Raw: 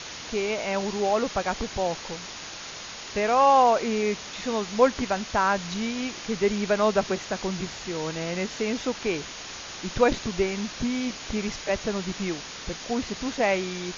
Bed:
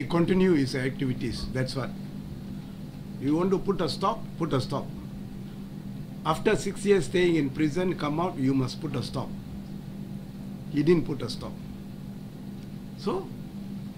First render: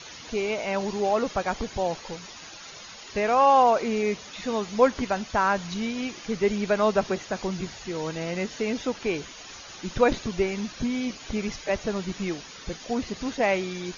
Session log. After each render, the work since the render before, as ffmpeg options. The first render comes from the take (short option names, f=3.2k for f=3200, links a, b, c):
-af "afftdn=nr=10:nf=-39"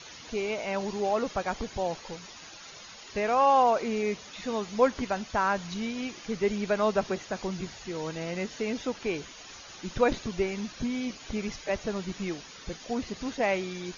-af "volume=-3.5dB"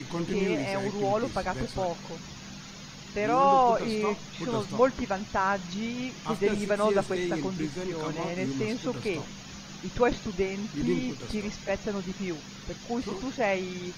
-filter_complex "[1:a]volume=-8dB[a];[0:a][a]amix=inputs=2:normalize=0"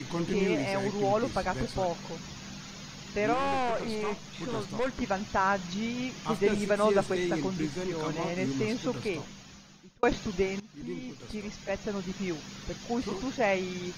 -filter_complex "[0:a]asettb=1/sr,asplit=3[a][b][c];[a]atrim=end=3.334[d];[b]atrim=start=3.33:end=5.01,asetpts=PTS-STARTPTS,afade=t=in:d=0.004:c=qsin,afade=t=out:st=1.676:d=0.004:c=qsin,aeval=exprs='(tanh(20*val(0)+0.55)-tanh(0.55))/20':c=same[e];[c]atrim=start=5.006[f];[d][e]acrossfade=d=0.004:c1=hsin:c2=qsin[g];[g][f]acrossfade=d=0.004:c1=qsin:c2=hsin,asplit=3[h][i][j];[h]atrim=end=10.03,asetpts=PTS-STARTPTS,afade=t=out:st=8.87:d=1.16[k];[i]atrim=start=10.03:end=10.6,asetpts=PTS-STARTPTS,afade=t=in:d=0.004:c=hsin,afade=t=out:st=0.566:d=0.004:c=hsin:silence=0.141254[l];[j]atrim=start=10.6,asetpts=PTS-STARTPTS,afade=t=in:d=1.72:silence=0.141254[m];[k][l][m]concat=n=3:v=0:a=1"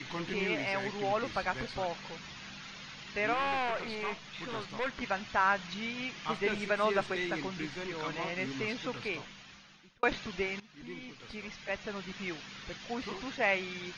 -af "lowpass=2.6k,tiltshelf=f=1.2k:g=-9"